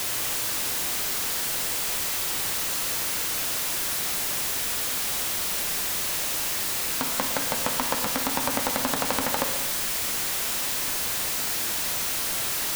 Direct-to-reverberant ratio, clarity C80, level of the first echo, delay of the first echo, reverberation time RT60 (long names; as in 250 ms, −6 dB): 5.0 dB, 8.5 dB, no echo audible, no echo audible, 1.0 s